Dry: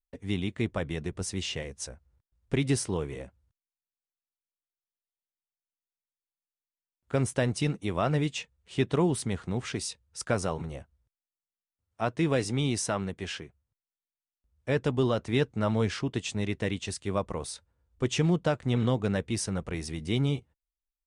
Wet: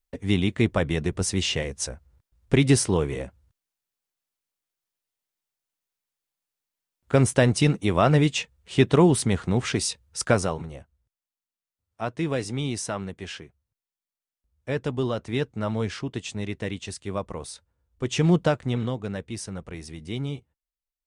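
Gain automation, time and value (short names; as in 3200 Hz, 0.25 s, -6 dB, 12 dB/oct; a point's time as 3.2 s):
10.29 s +8 dB
10.69 s -0.5 dB
18.03 s -0.5 dB
18.36 s +7 dB
18.96 s -3.5 dB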